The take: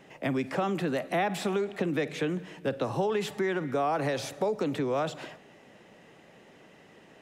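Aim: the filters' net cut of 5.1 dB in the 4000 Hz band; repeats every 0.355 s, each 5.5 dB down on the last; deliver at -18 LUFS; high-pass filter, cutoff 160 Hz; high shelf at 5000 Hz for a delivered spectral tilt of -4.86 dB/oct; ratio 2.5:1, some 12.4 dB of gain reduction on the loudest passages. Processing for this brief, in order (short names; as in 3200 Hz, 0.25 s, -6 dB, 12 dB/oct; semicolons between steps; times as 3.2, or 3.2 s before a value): HPF 160 Hz; bell 4000 Hz -4 dB; high shelf 5000 Hz -6 dB; compressor 2.5:1, threshold -44 dBFS; feedback echo 0.355 s, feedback 53%, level -5.5 dB; gain +23.5 dB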